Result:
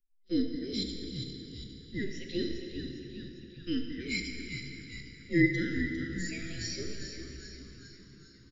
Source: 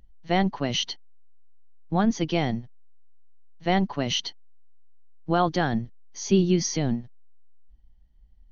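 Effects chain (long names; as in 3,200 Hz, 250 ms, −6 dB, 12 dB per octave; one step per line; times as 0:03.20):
frequency inversion band by band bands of 1,000 Hz
bass and treble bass +6 dB, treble 0 dB
all-pass phaser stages 12, 0.47 Hz, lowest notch 690–2,600 Hz
low-shelf EQ 110 Hz −10.5 dB
noise gate −44 dBFS, range −17 dB
elliptic band-stop filter 420–1,800 Hz, stop band 60 dB
harmonic and percussive parts rebalanced percussive −10 dB
echo with shifted repeats 403 ms, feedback 58%, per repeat −70 Hz, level −8.5 dB
dense smooth reverb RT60 3.6 s, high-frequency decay 0.75×, DRR 2.5 dB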